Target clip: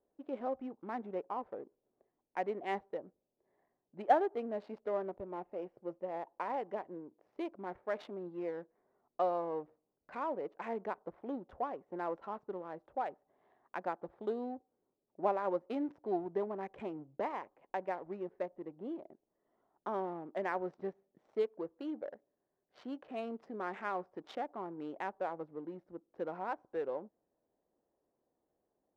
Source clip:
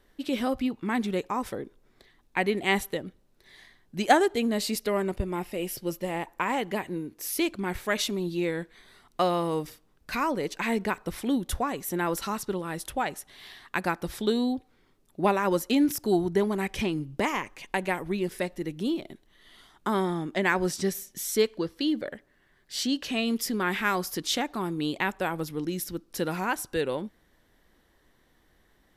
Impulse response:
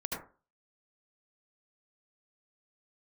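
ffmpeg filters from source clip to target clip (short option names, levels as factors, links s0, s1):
-af "adynamicsmooth=sensitivity=4:basefreq=690,bandpass=f=650:t=q:w=1.5:csg=0,volume=0.562"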